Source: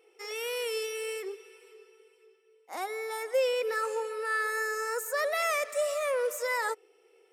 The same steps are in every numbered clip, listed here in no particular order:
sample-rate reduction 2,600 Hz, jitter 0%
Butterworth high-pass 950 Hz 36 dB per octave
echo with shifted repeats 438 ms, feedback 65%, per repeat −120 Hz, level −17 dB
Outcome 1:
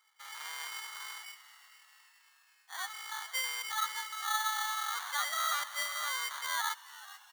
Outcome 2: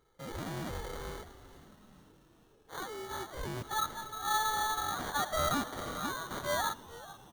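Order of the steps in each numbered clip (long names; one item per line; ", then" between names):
sample-rate reduction, then echo with shifted repeats, then Butterworth high-pass
Butterworth high-pass, then sample-rate reduction, then echo with shifted repeats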